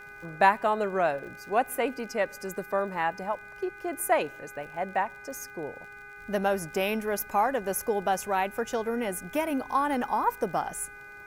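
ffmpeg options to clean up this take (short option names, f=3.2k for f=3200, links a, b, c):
-af "adeclick=t=4,bandreject=f=408.4:t=h:w=4,bandreject=f=816.8:t=h:w=4,bandreject=f=1.2252k:t=h:w=4,bandreject=f=1.6336k:t=h:w=4,bandreject=f=2.042k:t=h:w=4,bandreject=f=2.4504k:t=h:w=4,bandreject=f=1.5k:w=30,agate=range=-21dB:threshold=-38dB"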